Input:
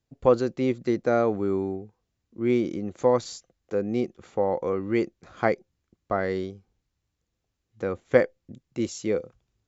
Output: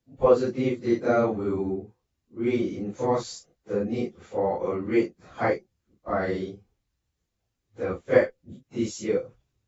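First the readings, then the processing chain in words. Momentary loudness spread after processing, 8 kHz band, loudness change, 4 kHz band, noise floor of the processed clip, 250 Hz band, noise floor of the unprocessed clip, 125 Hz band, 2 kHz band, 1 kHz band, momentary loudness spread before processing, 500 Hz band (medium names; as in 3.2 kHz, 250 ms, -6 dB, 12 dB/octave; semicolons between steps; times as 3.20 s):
12 LU, no reading, 0.0 dB, 0.0 dB, -80 dBFS, 0.0 dB, -81 dBFS, 0.0 dB, 0.0 dB, 0.0 dB, 10 LU, 0.0 dB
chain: phase randomisation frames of 100 ms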